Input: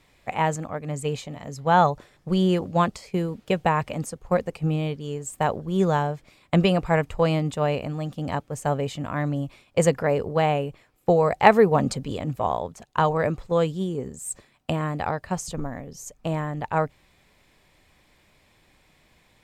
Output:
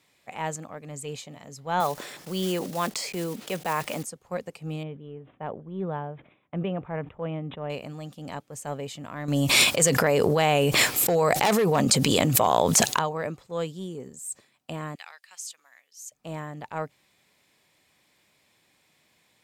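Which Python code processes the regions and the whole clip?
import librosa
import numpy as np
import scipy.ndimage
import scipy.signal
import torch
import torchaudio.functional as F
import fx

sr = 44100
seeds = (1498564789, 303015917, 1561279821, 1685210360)

y = fx.chain(x, sr, fx.block_float(bits=5),
    fx.peak_eq(hz=97.0, db=-13.5, octaves=1.1),
    fx.env_flatten(amount_pct=50), at=(1.8, 4.03))
y = fx.chain(y, sr, fx.spacing_loss(db_at_10k=42),
    fx.resample_bad(factor=6, down='none', up='filtered'),
    fx.sustainer(db_per_s=120.0), at=(4.83, 7.7))
y = fx.chain(y, sr, fx.high_shelf(hz=2800.0, db=8.0),
    fx.clip_hard(threshold_db=-11.5),
    fx.env_flatten(amount_pct=100), at=(9.28, 12.99))
y = fx.chain(y, sr, fx.cheby1_highpass(hz=2400.0, order=2),
    fx.transient(attack_db=2, sustain_db=-2), at=(14.95, 16.12))
y = scipy.signal.sosfilt(scipy.signal.butter(2, 130.0, 'highpass', fs=sr, output='sos'), y)
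y = fx.high_shelf(y, sr, hz=3100.0, db=8.0)
y = fx.transient(y, sr, attack_db=-5, sustain_db=0)
y = y * librosa.db_to_amplitude(-7.0)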